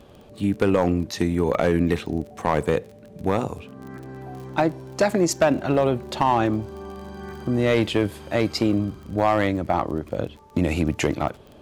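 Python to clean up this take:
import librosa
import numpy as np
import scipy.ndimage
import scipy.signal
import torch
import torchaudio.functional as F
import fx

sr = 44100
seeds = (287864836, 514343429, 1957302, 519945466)

y = fx.fix_declip(x, sr, threshold_db=-11.0)
y = fx.fix_declick_ar(y, sr, threshold=6.5)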